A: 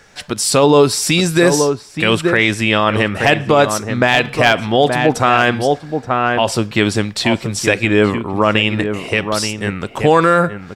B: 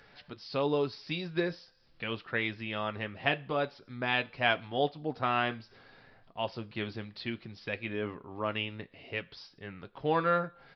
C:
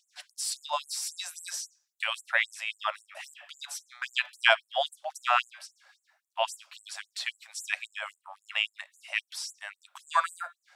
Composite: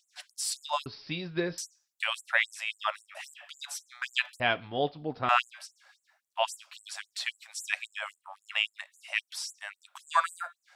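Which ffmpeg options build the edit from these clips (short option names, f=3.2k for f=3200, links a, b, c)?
-filter_complex "[1:a]asplit=2[a][b];[2:a]asplit=3[c][d][e];[c]atrim=end=0.862[f];[a]atrim=start=0.858:end=1.582[g];[d]atrim=start=1.578:end=4.402[h];[b]atrim=start=4.398:end=5.292[i];[e]atrim=start=5.288[j];[f][g]acrossfade=d=0.004:c1=hsin:c2=hsin[k];[k][h]acrossfade=d=0.004:c1=hsin:c2=hsin[l];[l][i]acrossfade=d=0.004:c1=hsin:c2=hsin[m];[m][j]acrossfade=d=0.004:c1=hsin:c2=hsin"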